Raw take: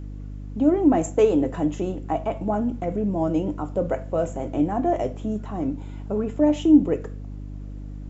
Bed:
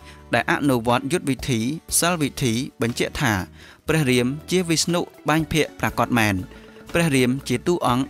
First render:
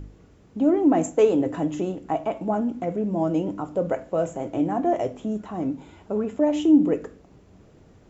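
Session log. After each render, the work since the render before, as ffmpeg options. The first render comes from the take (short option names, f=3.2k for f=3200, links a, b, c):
-af "bandreject=f=50:t=h:w=4,bandreject=f=100:t=h:w=4,bandreject=f=150:t=h:w=4,bandreject=f=200:t=h:w=4,bandreject=f=250:t=h:w=4,bandreject=f=300:t=h:w=4"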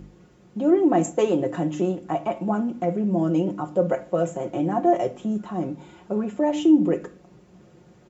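-af "highpass=76,aecho=1:1:5.6:0.67"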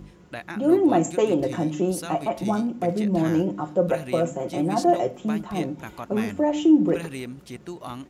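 -filter_complex "[1:a]volume=-16dB[a];[0:a][a]amix=inputs=2:normalize=0"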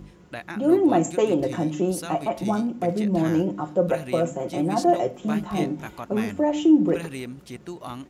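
-filter_complex "[0:a]asettb=1/sr,asplit=3[a][b][c];[a]atrim=end=5.214[d];[b]atrim=start=5.21:end=5.87,asetpts=PTS-STARTPTS,afade=t=in:d=0.004:c=qsin,afade=t=out:st=0.656:d=0.004:c=qsin,asplit=2[e][f];[f]adelay=20,volume=-2.5dB[g];[e][g]amix=inputs=2:normalize=0,atrim=end_sample=29106[h];[c]atrim=start=5.866[i];[d][h]acrossfade=d=0.004:c1=hsin:c2=qsin[j];[j][i]acrossfade=d=0.004:c1=qsin:c2=hsin"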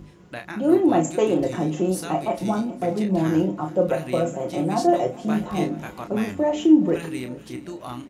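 -filter_complex "[0:a]asplit=2[a][b];[b]adelay=32,volume=-7.5dB[c];[a][c]amix=inputs=2:normalize=0,aecho=1:1:421|842|1263|1684:0.112|0.0595|0.0315|0.0167"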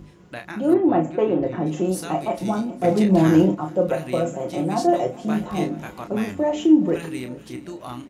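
-filter_complex "[0:a]asplit=3[a][b][c];[a]afade=t=out:st=0.73:d=0.02[d];[b]lowpass=2.1k,afade=t=in:st=0.73:d=0.02,afade=t=out:st=1.65:d=0.02[e];[c]afade=t=in:st=1.65:d=0.02[f];[d][e][f]amix=inputs=3:normalize=0,asettb=1/sr,asplit=3[g][h][i];[g]atrim=end=2.844[j];[h]atrim=start=2.84:end=3.55,asetpts=PTS-STARTPTS,afade=t=in:d=0.004:c=qsin,afade=t=out:st=0.706:d=0.004:c=qsin,acontrast=50[k];[i]atrim=start=3.546[l];[j][k]acrossfade=d=0.004:c1=hsin:c2=qsin[m];[m][l]acrossfade=d=0.004:c1=qsin:c2=hsin"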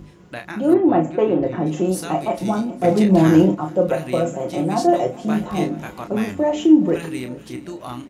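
-af "volume=2.5dB"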